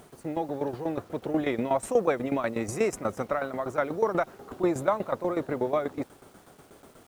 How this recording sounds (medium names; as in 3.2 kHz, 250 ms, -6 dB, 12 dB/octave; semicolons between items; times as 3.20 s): tremolo saw down 8.2 Hz, depth 80%; a quantiser's noise floor 10-bit, dither none